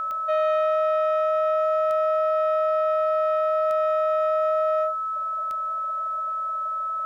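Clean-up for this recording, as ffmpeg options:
-af "adeclick=t=4,bandreject=f=1.3k:w=30,agate=range=-21dB:threshold=-20dB"

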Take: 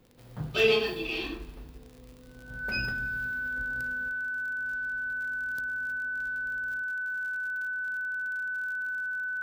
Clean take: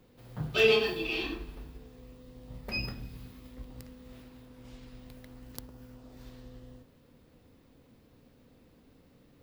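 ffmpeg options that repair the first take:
-af "adeclick=t=4,bandreject=f=1.5k:w=30,asetnsamples=n=441:p=0,asendcmd='4.09 volume volume 8.5dB',volume=0dB"

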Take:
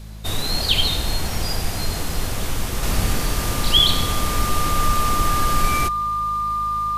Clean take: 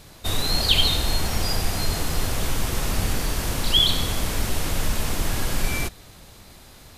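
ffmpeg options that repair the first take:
-af "bandreject=f=52.9:t=h:w=4,bandreject=f=105.8:t=h:w=4,bandreject=f=158.7:t=h:w=4,bandreject=f=211.6:t=h:w=4,bandreject=f=1.2k:w=30,asetnsamples=n=441:p=0,asendcmd='2.83 volume volume -3dB',volume=0dB"

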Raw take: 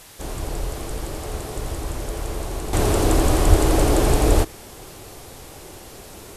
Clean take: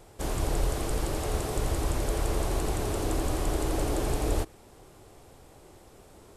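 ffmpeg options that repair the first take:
-filter_complex "[0:a]adeclick=t=4,asplit=3[a][b][c];[a]afade=t=out:st=3.49:d=0.02[d];[b]highpass=f=140:w=0.5412,highpass=f=140:w=1.3066,afade=t=in:st=3.49:d=0.02,afade=t=out:st=3.61:d=0.02[e];[c]afade=t=in:st=3.61:d=0.02[f];[d][e][f]amix=inputs=3:normalize=0,afwtdn=0.0063,asetnsamples=n=441:p=0,asendcmd='2.73 volume volume -11dB',volume=0dB"

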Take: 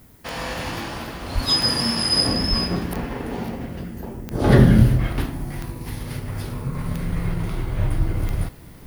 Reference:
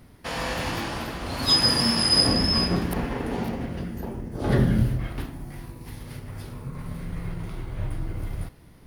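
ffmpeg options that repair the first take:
-filter_complex "[0:a]adeclick=t=4,asplit=3[a][b][c];[a]afade=t=out:st=1.34:d=0.02[d];[b]highpass=f=140:w=0.5412,highpass=f=140:w=1.3066,afade=t=in:st=1.34:d=0.02,afade=t=out:st=1.46:d=0.02[e];[c]afade=t=in:st=1.46:d=0.02[f];[d][e][f]amix=inputs=3:normalize=0,asplit=3[g][h][i];[g]afade=t=out:st=2.49:d=0.02[j];[h]highpass=f=140:w=0.5412,highpass=f=140:w=1.3066,afade=t=in:st=2.49:d=0.02,afade=t=out:st=2.61:d=0.02[k];[i]afade=t=in:st=2.61:d=0.02[l];[j][k][l]amix=inputs=3:normalize=0,asplit=3[m][n][o];[m]afade=t=out:st=7.98:d=0.02[p];[n]highpass=f=140:w=0.5412,highpass=f=140:w=1.3066,afade=t=in:st=7.98:d=0.02,afade=t=out:st=8.1:d=0.02[q];[o]afade=t=in:st=8.1:d=0.02[r];[p][q][r]amix=inputs=3:normalize=0,agate=range=-21dB:threshold=-26dB,asetnsamples=n=441:p=0,asendcmd='4.31 volume volume -8dB',volume=0dB"

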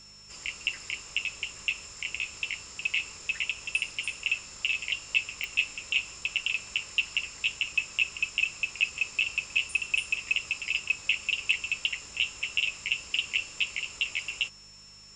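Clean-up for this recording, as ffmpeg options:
-af "adeclick=t=4,bandreject=f=50.6:t=h:w=4,bandreject=f=101.2:t=h:w=4,bandreject=f=151.8:t=h:w=4,bandreject=f=202.4:t=h:w=4,bandreject=f=5.4k:w=30"

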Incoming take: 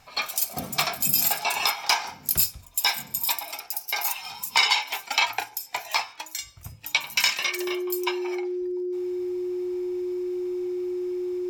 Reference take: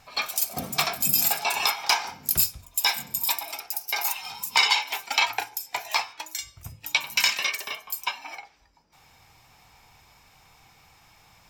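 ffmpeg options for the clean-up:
-af "adeclick=t=4,bandreject=f=360:w=30"

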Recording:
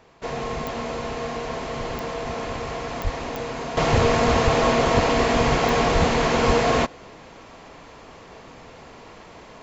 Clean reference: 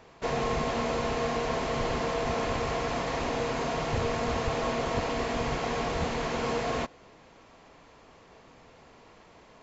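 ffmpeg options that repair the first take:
-filter_complex "[0:a]adeclick=t=4,asplit=3[a][b][c];[a]afade=t=out:st=3.03:d=0.02[d];[b]highpass=f=140:w=0.5412,highpass=f=140:w=1.3066,afade=t=in:st=3.03:d=0.02,afade=t=out:st=3.15:d=0.02[e];[c]afade=t=in:st=3.15:d=0.02[f];[d][e][f]amix=inputs=3:normalize=0,asplit=3[g][h][i];[g]afade=t=out:st=5.94:d=0.02[j];[h]highpass=f=140:w=0.5412,highpass=f=140:w=1.3066,afade=t=in:st=5.94:d=0.02,afade=t=out:st=6.06:d=0.02[k];[i]afade=t=in:st=6.06:d=0.02[l];[j][k][l]amix=inputs=3:normalize=0,asplit=3[m][n][o];[m]afade=t=out:st=6.46:d=0.02[p];[n]highpass=f=140:w=0.5412,highpass=f=140:w=1.3066,afade=t=in:st=6.46:d=0.02,afade=t=out:st=6.58:d=0.02[q];[o]afade=t=in:st=6.58:d=0.02[r];[p][q][r]amix=inputs=3:normalize=0,asetnsamples=n=441:p=0,asendcmd='3.77 volume volume -10.5dB',volume=0dB"

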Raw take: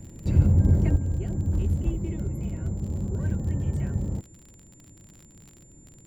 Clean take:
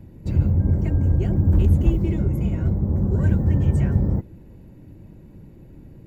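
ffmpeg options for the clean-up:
-af "adeclick=t=4,bandreject=f=7.2k:w=30,asetnsamples=n=441:p=0,asendcmd='0.96 volume volume 8.5dB',volume=0dB"

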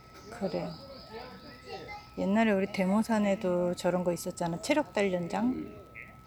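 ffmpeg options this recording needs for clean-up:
-af "adeclick=t=4,bandreject=f=63.1:t=h:w=4,bandreject=f=126.2:t=h:w=4,bandreject=f=189.3:t=h:w=4,bandreject=f=252.4:t=h:w=4,bandreject=f=315.5:t=h:w=4,bandreject=f=378.6:t=h:w=4,bandreject=f=1.3k:w=30"

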